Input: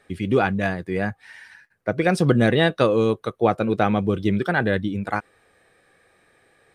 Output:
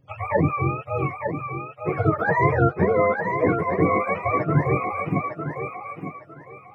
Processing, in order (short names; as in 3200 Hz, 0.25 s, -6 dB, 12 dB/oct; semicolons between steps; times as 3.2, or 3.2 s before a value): spectrum mirrored in octaves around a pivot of 480 Hz; 2.53–3.28 LPF 8000 Hz -> 4200 Hz 12 dB/oct; thinning echo 0.905 s, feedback 28%, high-pass 270 Hz, level -5 dB